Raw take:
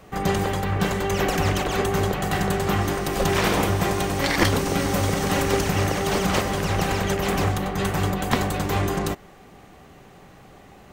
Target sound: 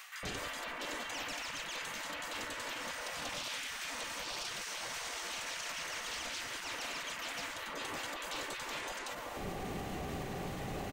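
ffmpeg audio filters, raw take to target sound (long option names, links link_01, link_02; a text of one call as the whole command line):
ffmpeg -i in.wav -filter_complex "[0:a]acrossover=split=8500[link_01][link_02];[link_02]acompressor=threshold=-49dB:ratio=4:attack=1:release=60[link_03];[link_01][link_03]amix=inputs=2:normalize=0,afftfilt=real='re*lt(hypot(re,im),0.112)':imag='im*lt(hypot(re,im),0.112)':win_size=1024:overlap=0.75,areverse,acompressor=threshold=-42dB:ratio=10,areverse,alimiter=level_in=19dB:limit=-24dB:level=0:latency=1:release=52,volume=-19dB,acrossover=split=1300[link_04][link_05];[link_04]adelay=230[link_06];[link_06][link_05]amix=inputs=2:normalize=0,volume=12dB" out.wav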